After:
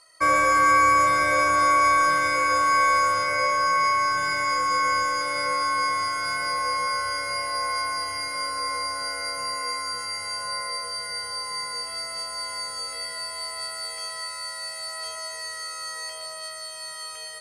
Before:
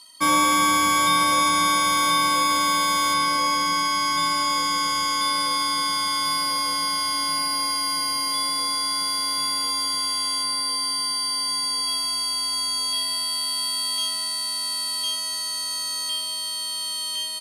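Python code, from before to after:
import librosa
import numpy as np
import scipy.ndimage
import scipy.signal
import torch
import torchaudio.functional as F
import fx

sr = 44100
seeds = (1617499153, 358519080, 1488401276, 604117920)

p1 = scipy.signal.sosfilt(scipy.signal.butter(2, 8400.0, 'lowpass', fs=sr, output='sos'), x)
p2 = fx.peak_eq(p1, sr, hz=210.0, db=-13.0, octaves=0.77)
p3 = fx.fixed_phaser(p2, sr, hz=920.0, stages=6)
p4 = 10.0 ** (-24.0 / 20.0) * np.tanh(p3 / 10.0 ** (-24.0 / 20.0))
p5 = p3 + (p4 * librosa.db_to_amplitude(-8.0))
p6 = fx.high_shelf(p5, sr, hz=3200.0, db=-12.0)
p7 = p6 + fx.echo_single(p6, sr, ms=118, db=-7.5, dry=0)
y = p7 * librosa.db_to_amplitude(5.0)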